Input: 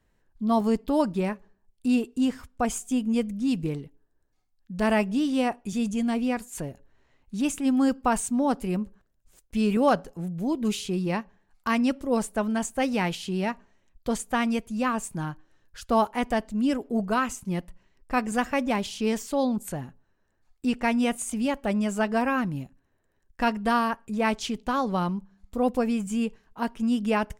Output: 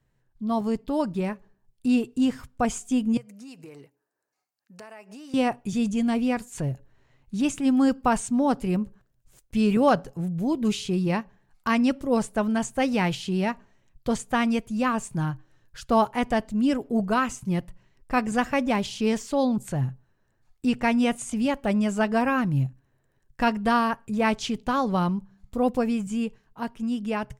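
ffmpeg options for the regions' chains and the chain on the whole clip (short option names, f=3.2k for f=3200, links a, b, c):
-filter_complex "[0:a]asettb=1/sr,asplit=3[a][b][c];[a]atrim=end=3.174[d];[b]atrim=start=3.17:end=5.34,asetpts=PTS-STARTPTS,afade=t=in:d=0.004:c=qsin,afade=t=out:st=2.166:d=0.004:c=qsin,highpass=510,equalizer=f=3.4k:w=5.6:g=-13,acompressor=threshold=-42dB:ratio=8:attack=3.2:release=140:knee=1:detection=peak[e];[c]atrim=start=5.336[f];[d][e]acrossfade=d=0.004:c1=hsin:c2=qsin[g];[g][f]acrossfade=d=0.004:c1=qsin:c2=hsin,acrossover=split=8600[h][i];[i]acompressor=threshold=-55dB:ratio=4:attack=1:release=60[j];[h][j]amix=inputs=2:normalize=0,equalizer=f=130:w=4.4:g=14.5,dynaudnorm=f=140:g=21:m=5dB,volume=-3.5dB"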